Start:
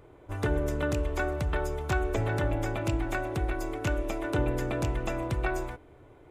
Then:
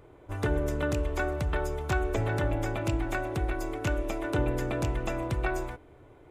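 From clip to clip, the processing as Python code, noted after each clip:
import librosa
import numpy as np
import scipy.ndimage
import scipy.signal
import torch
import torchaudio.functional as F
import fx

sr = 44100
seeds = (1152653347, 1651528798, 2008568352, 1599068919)

y = x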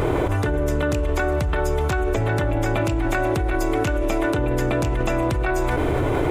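y = fx.env_flatten(x, sr, amount_pct=100)
y = y * librosa.db_to_amplitude(3.0)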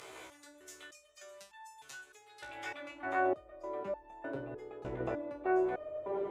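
y = fx.filter_sweep_bandpass(x, sr, from_hz=6600.0, to_hz=520.0, start_s=2.26, end_s=3.38, q=1.0)
y = fx.resonator_held(y, sr, hz=3.3, low_hz=64.0, high_hz=890.0)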